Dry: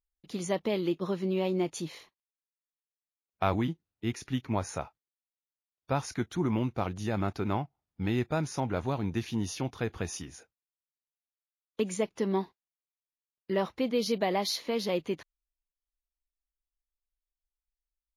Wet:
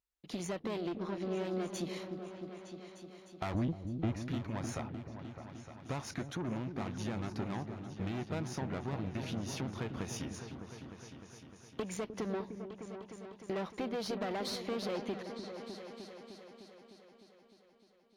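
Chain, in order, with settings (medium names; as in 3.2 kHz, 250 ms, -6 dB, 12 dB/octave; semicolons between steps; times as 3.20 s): valve stage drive 31 dB, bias 0.7; compression, threshold -41 dBFS, peak gain reduction 9 dB; 3.54–4.22 s: tilt EQ -2.5 dB/octave; high-pass 97 Hz 6 dB/octave; treble shelf 6.7 kHz -8 dB; 0.78–1.33 s: low-pass 10 kHz; delay with an opening low-pass 304 ms, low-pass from 400 Hz, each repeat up 2 oct, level -6 dB; trim +6.5 dB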